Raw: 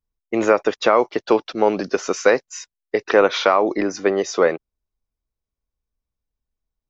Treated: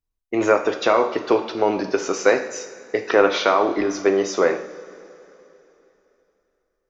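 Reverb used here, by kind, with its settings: two-slope reverb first 0.61 s, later 3.3 s, from -17 dB, DRR 4.5 dB; gain -2 dB

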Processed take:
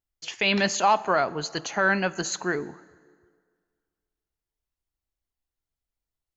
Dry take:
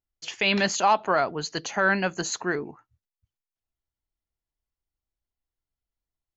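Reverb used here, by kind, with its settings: plate-style reverb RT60 1.9 s, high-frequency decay 0.7×, DRR 18 dB

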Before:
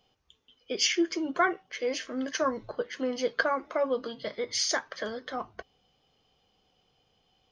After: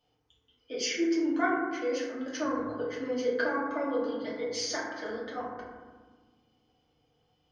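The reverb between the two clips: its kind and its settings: FDN reverb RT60 1.4 s, low-frequency decay 1.6×, high-frequency decay 0.3×, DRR -6.5 dB; gain -10 dB

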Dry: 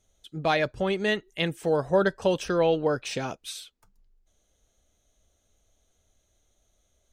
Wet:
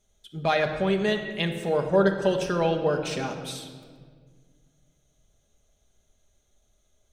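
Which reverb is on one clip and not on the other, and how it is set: shoebox room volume 2500 m³, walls mixed, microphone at 1.3 m; gain -1 dB

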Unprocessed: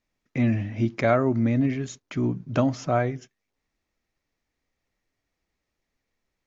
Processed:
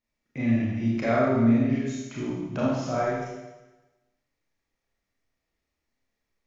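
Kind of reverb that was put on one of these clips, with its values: Schroeder reverb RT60 1.1 s, combs from 27 ms, DRR -6.5 dB; gain -8.5 dB

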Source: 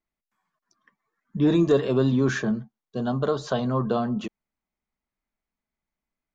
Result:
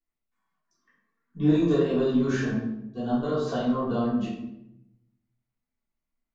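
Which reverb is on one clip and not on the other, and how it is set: shoebox room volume 220 m³, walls mixed, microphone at 3.4 m; gain -13.5 dB

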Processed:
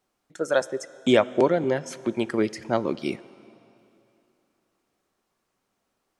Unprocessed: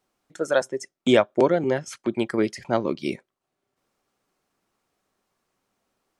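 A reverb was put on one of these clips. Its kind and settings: plate-style reverb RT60 2.9 s, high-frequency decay 0.95×, DRR 17.5 dB; gain -1 dB

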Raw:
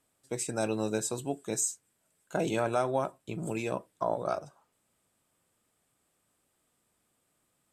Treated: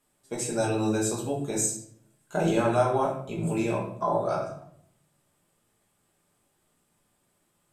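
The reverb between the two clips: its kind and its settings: shoebox room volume 110 m³, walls mixed, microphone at 1.3 m; gain -1 dB

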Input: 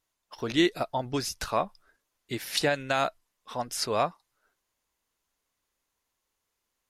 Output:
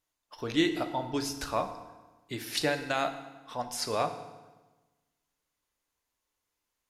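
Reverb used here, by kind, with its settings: FDN reverb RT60 1.2 s, low-frequency decay 1.2×, high-frequency decay 0.85×, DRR 7 dB; gain -3.5 dB

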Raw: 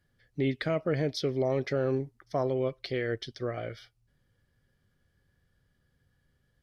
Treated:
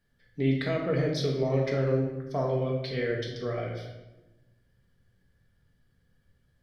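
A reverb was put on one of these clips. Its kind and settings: shoebox room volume 460 m³, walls mixed, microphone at 1.6 m; gain -2.5 dB

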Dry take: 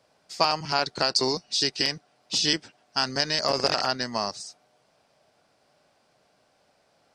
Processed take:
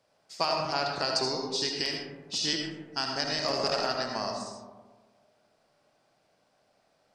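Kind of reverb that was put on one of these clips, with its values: digital reverb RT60 1.4 s, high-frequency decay 0.3×, pre-delay 35 ms, DRR 1 dB; gain -6.5 dB

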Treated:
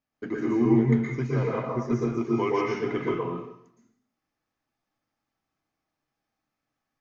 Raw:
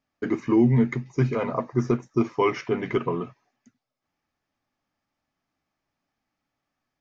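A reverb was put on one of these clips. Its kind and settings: plate-style reverb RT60 0.7 s, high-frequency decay 0.9×, pre-delay 0.105 s, DRR -3.5 dB; gain -7 dB

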